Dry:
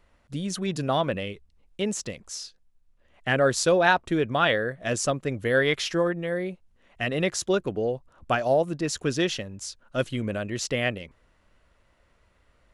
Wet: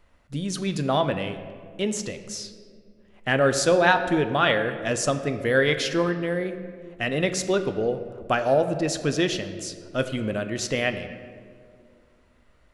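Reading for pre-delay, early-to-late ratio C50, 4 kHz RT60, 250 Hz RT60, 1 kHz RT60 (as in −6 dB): 3 ms, 10.5 dB, 1.1 s, 2.8 s, 1.8 s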